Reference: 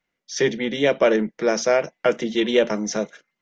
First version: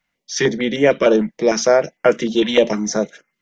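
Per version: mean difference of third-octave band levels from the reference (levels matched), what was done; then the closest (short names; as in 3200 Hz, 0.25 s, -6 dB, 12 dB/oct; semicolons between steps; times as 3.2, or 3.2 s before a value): 1.5 dB: stepped notch 6.6 Hz 400–3800 Hz; gain +5.5 dB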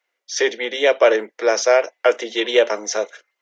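5.0 dB: HPF 420 Hz 24 dB/oct; gain +4.5 dB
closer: first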